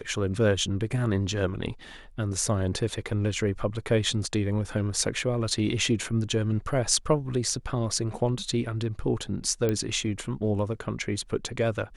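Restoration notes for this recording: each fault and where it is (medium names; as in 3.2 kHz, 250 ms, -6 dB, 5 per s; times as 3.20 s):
9.69 s: pop -14 dBFS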